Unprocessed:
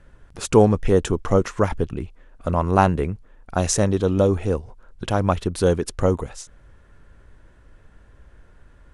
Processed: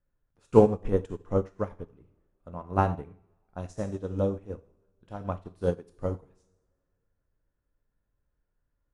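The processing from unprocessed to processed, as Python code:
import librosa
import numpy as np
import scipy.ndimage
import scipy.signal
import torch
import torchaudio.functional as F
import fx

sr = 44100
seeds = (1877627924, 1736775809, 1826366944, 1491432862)

y = fx.high_shelf(x, sr, hz=2200.0, db=-9.5)
y = fx.rev_double_slope(y, sr, seeds[0], early_s=0.73, late_s=2.7, knee_db=-18, drr_db=4.5)
y = fx.upward_expand(y, sr, threshold_db=-27.0, expansion=2.5)
y = y * librosa.db_to_amplitude(-2.0)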